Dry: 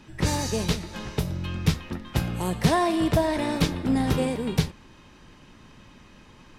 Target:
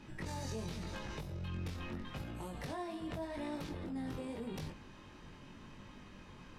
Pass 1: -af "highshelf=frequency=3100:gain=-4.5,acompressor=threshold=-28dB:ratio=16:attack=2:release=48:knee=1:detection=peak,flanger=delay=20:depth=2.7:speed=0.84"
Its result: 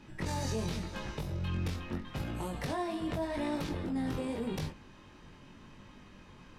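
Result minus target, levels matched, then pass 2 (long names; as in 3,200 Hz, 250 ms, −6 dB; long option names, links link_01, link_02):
downward compressor: peak gain reduction −7 dB
-af "highshelf=frequency=3100:gain=-4.5,acompressor=threshold=-35.5dB:ratio=16:attack=2:release=48:knee=1:detection=peak,flanger=delay=20:depth=2.7:speed=0.84"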